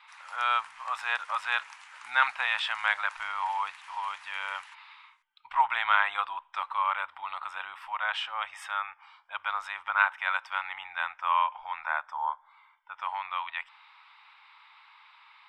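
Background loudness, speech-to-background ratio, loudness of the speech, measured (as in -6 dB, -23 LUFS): -48.5 LUFS, 18.0 dB, -30.5 LUFS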